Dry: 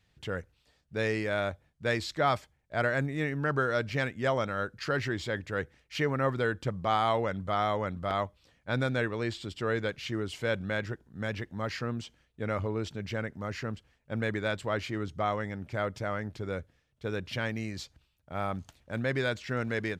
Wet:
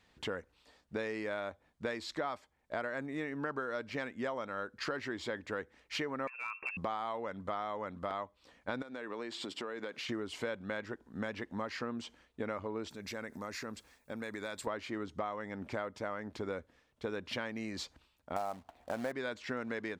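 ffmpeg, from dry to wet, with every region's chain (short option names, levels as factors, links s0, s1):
-filter_complex "[0:a]asettb=1/sr,asplit=3[s0][s1][s2];[s0]atrim=end=6.274[s3];[s1]atrim=start=6.27:end=6.77,asetpts=PTS-STARTPTS,afade=t=in:d=0.004:c=qsin,afade=t=out:st=0.496:d=0.004:c=qsin,lowpass=f=2400:t=q:w=0.5098,lowpass=f=2400:t=q:w=0.6013,lowpass=f=2400:t=q:w=0.9,lowpass=f=2400:t=q:w=2.563,afreqshift=-2800,acompressor=threshold=0.0126:ratio=2:attack=3.2:release=140:knee=1:detection=peak,aeval=exprs='clip(val(0),-1,0.0355)':c=same[s4];[s2]atrim=start=6.766[s5];[s3][s4]acrossfade=d=0.004:c1=hsin:c2=qsin[s6];[s6][s5]acrossfade=d=0.004:c1=qsin:c2=hsin,asettb=1/sr,asplit=3[s7][s8][s9];[s7]atrim=end=8.824[s10];[s8]atrim=start=8.82:end=10.09,asetpts=PTS-STARTPTS,afade=t=in:d=0.004:c=qsin,afade=t=out:st=1.266:d=0.004:c=qsin,highpass=200,acompressor=threshold=0.01:ratio=12:attack=3.2:release=140:knee=1:detection=peak[s11];[s9]atrim=start=10.086[s12];[s10][s11]acrossfade=d=0.004:c1=hsin:c2=qsin[s13];[s13][s12]acrossfade=d=0.004:c1=qsin:c2=hsin,asettb=1/sr,asplit=3[s14][s15][s16];[s14]atrim=end=12.894[s17];[s15]atrim=start=12.89:end=14.67,asetpts=PTS-STARTPTS,afade=t=in:d=0.004:c=qsin,afade=t=out:st=1.776:d=0.004:c=qsin,aemphasis=mode=production:type=75fm,bandreject=f=3000:w=7.5,acompressor=threshold=0.00708:ratio=4:attack=3.2:release=140:knee=1:detection=peak[s18];[s16]atrim=start=14.666[s19];[s17][s18]acrossfade=d=0.004:c1=hsin:c2=qsin[s20];[s20][s19]acrossfade=d=0.004:c1=qsin:c2=hsin,asettb=1/sr,asplit=3[s21][s22][s23];[s21]atrim=end=18.364[s24];[s22]atrim=start=18.36:end=19.12,asetpts=PTS-STARTPTS,afade=t=in:d=0.004:c=qsin,afade=t=out:st=0.756:d=0.004:c=qsin,lowpass=2500,equalizer=f=720:w=3:g=13.5,acrusher=bits=3:mode=log:mix=0:aa=0.000001[s25];[s23]atrim=start=19.116[s26];[s24][s25]acrossfade=d=0.004:c1=hsin:c2=qsin[s27];[s27][s26]acrossfade=d=0.004:c1=qsin:c2=hsin,equalizer=f=125:t=o:w=1:g=-7,equalizer=f=250:t=o:w=1:g=9,equalizer=f=500:t=o:w=1:g=5,equalizer=f=1000:t=o:w=1:g=10,equalizer=f=2000:t=o:w=1:g=4,equalizer=f=4000:t=o:w=1:g=4,equalizer=f=8000:t=o:w=1:g=4,acompressor=threshold=0.0224:ratio=6,volume=0.75"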